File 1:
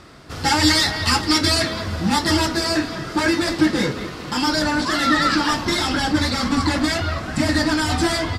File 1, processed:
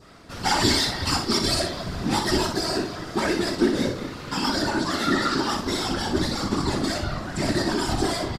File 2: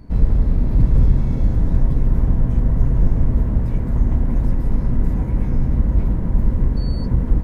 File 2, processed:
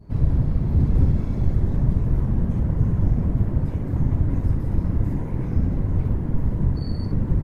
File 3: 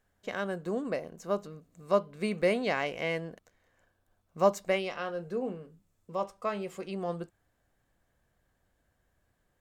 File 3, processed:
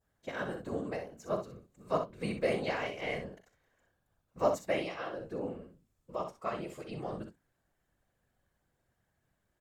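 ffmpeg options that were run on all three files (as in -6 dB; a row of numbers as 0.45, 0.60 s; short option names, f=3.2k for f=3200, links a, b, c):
-filter_complex "[0:a]adynamicequalizer=threshold=0.0158:dfrequency=2100:dqfactor=1.1:tfrequency=2100:tqfactor=1.1:attack=5:release=100:ratio=0.375:range=3.5:mode=cutabove:tftype=bell,bandreject=f=60:t=h:w=6,bandreject=f=120:t=h:w=6,bandreject=f=180:t=h:w=6,afftfilt=real='hypot(re,im)*cos(2*PI*random(0))':imag='hypot(re,im)*sin(2*PI*random(1))':win_size=512:overlap=0.75,asplit=2[a][b];[b]aecho=0:1:40|62:0.224|0.398[c];[a][c]amix=inputs=2:normalize=0,volume=1.5dB"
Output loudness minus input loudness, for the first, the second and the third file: -5.0, -3.0, -4.0 LU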